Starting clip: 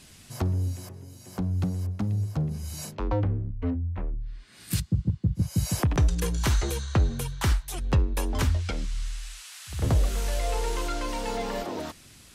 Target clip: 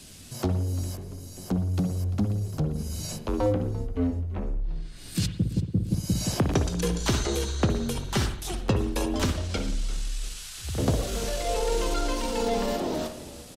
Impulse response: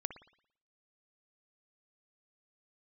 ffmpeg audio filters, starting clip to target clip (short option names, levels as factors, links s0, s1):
-filter_complex "[0:a]acrossover=split=7100[s0][s1];[s1]acompressor=threshold=0.00447:ratio=4:attack=1:release=60[s2];[s0][s2]amix=inputs=2:normalize=0,equalizer=f=125:t=o:w=1:g=-4,equalizer=f=1000:t=o:w=1:g=-5,equalizer=f=2000:t=o:w=1:g=-6,acrossover=split=140|3000[s3][s4][s5];[s3]acompressor=threshold=0.0158:ratio=5[s6];[s6][s4][s5]amix=inputs=3:normalize=0,atempo=0.91,asplit=5[s7][s8][s9][s10][s11];[s8]adelay=344,afreqshift=-50,volume=0.158[s12];[s9]adelay=688,afreqshift=-100,volume=0.0759[s13];[s10]adelay=1032,afreqshift=-150,volume=0.0363[s14];[s11]adelay=1376,afreqshift=-200,volume=0.0176[s15];[s7][s12][s13][s14][s15]amix=inputs=5:normalize=0[s16];[1:a]atrim=start_sample=2205[s17];[s16][s17]afir=irnorm=-1:irlink=0,volume=2.24"